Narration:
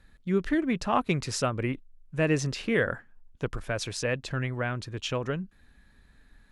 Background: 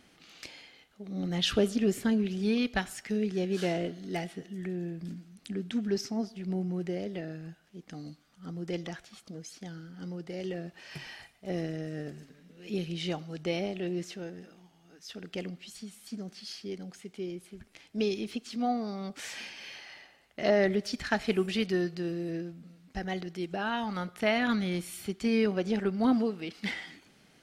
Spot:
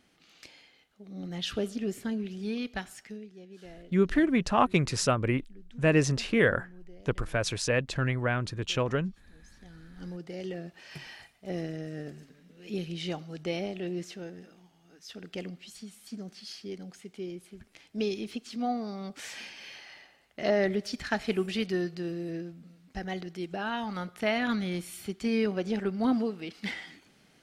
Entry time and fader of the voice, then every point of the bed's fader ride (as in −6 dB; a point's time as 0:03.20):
3.65 s, +2.0 dB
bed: 0:03.02 −5.5 dB
0:03.30 −18.5 dB
0:09.33 −18.5 dB
0:10.04 −1 dB